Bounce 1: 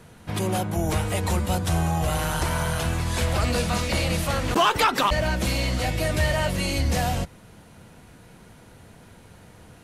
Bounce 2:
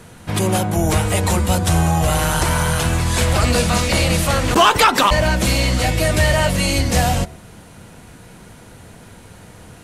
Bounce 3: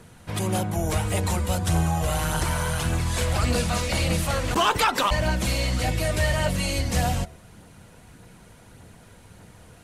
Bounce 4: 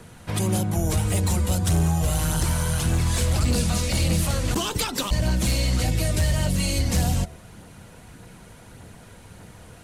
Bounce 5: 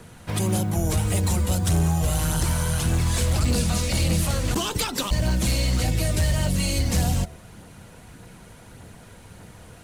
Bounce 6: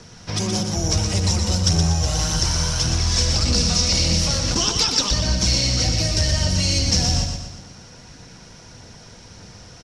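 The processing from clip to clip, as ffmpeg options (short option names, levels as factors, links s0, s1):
-af "equalizer=f=8100:w=1.5:g=3.5,bandreject=f=73.3:t=h:w=4,bandreject=f=146.6:t=h:w=4,bandreject=f=219.9:t=h:w=4,bandreject=f=293.2:t=h:w=4,bandreject=f=366.5:t=h:w=4,bandreject=f=439.8:t=h:w=4,bandreject=f=513.1:t=h:w=4,bandreject=f=586.4:t=h:w=4,bandreject=f=659.7:t=h:w=4,bandreject=f=733:t=h:w=4,bandreject=f=806.3:t=h:w=4,bandreject=f=879.6:t=h:w=4,bandreject=f=952.9:t=h:w=4,bandreject=f=1026.2:t=h:w=4,volume=2.37"
-af "aphaser=in_gain=1:out_gain=1:delay=2.1:decay=0.27:speed=1.7:type=triangular,volume=0.376"
-filter_complex "[0:a]acrossover=split=370|3700[s0][s1][s2];[s1]acompressor=threshold=0.0158:ratio=6[s3];[s0][s3][s2]amix=inputs=3:normalize=0,asoftclip=type=hard:threshold=0.112,volume=1.5"
-af "acrusher=bits=8:mode=log:mix=0:aa=0.000001"
-filter_complex "[0:a]lowpass=f=5500:t=q:w=9.6,asplit=2[s0][s1];[s1]aecho=0:1:120|240|360|480|600|720:0.501|0.231|0.106|0.0488|0.0224|0.0103[s2];[s0][s2]amix=inputs=2:normalize=0"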